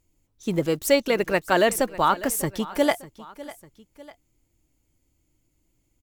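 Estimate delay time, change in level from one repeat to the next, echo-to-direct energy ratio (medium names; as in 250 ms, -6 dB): 599 ms, -6.0 dB, -17.0 dB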